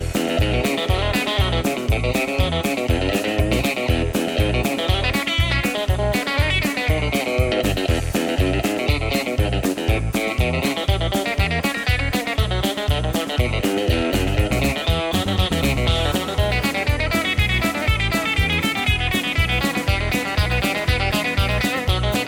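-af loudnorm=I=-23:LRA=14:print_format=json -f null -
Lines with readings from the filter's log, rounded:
"input_i" : "-20.1",
"input_tp" : "-6.6",
"input_lra" : "1.2",
"input_thresh" : "-30.1",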